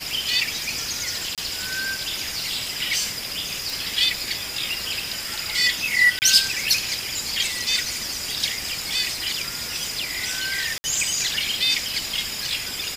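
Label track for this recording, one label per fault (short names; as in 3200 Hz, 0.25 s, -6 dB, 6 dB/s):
1.350000	1.380000	gap 27 ms
3.700000	3.700000	pop
6.190000	6.220000	gap 29 ms
10.780000	10.840000	gap 60 ms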